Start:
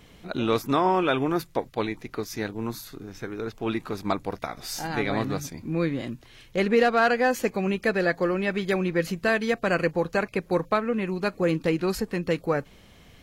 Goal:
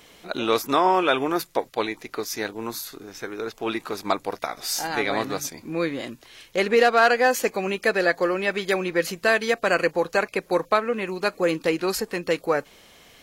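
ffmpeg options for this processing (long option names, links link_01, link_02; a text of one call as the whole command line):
ffmpeg -i in.wav -af "bass=frequency=250:gain=-14,treble=frequency=4000:gain=4,volume=4dB" out.wav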